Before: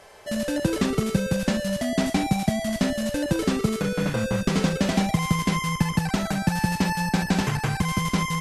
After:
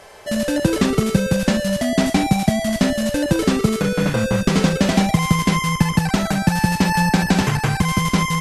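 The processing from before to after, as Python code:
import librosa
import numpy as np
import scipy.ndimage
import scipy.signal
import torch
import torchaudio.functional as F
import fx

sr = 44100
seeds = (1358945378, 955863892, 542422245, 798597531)

y = fx.band_squash(x, sr, depth_pct=70, at=(6.94, 7.42))
y = y * 10.0 ** (6.0 / 20.0)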